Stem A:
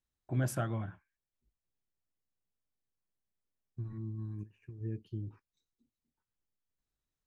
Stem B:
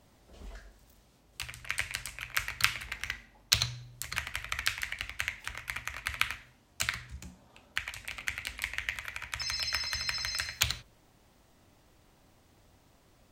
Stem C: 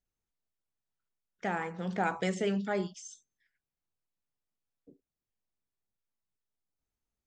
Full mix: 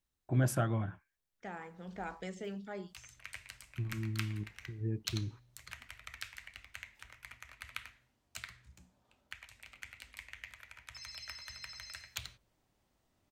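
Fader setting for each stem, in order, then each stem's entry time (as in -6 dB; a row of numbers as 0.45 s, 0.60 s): +2.5 dB, -14.0 dB, -11.5 dB; 0.00 s, 1.55 s, 0.00 s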